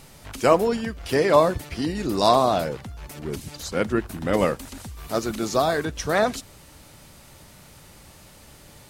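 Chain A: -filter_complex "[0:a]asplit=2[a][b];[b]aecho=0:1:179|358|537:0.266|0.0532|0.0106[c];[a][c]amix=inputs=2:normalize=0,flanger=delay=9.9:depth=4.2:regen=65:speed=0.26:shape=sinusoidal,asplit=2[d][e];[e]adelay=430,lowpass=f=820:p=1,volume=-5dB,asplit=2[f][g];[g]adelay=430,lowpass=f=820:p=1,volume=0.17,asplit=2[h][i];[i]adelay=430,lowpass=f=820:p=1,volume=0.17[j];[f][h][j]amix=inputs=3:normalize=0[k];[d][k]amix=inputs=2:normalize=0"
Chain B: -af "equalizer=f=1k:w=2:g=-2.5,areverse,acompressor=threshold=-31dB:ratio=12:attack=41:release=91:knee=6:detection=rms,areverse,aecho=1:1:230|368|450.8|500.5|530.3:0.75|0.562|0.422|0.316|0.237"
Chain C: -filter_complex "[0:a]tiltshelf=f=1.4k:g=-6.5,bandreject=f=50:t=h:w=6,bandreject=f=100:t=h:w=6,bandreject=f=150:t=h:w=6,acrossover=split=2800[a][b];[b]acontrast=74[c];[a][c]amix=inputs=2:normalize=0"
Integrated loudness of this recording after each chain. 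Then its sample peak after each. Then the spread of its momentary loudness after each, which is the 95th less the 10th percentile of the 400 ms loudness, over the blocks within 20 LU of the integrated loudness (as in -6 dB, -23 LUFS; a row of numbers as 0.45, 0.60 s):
-27.0, -30.5, -22.5 LUFS; -6.0, -15.5, -1.0 dBFS; 13, 15, 18 LU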